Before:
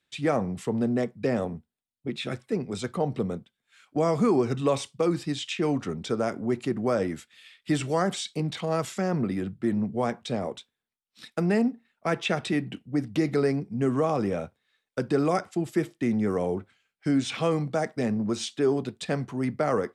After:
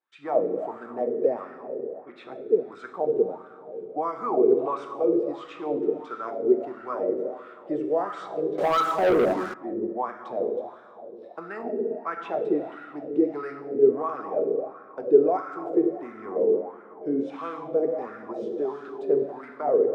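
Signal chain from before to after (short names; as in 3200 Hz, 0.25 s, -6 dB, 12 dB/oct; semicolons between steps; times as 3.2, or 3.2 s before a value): bell 350 Hz +9.5 dB 0.83 oct; plate-style reverb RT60 3.2 s, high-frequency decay 0.6×, DRR 2 dB; wah 1.5 Hz 420–1400 Hz, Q 5.9; 8.58–9.54 sample leveller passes 3; gain +5 dB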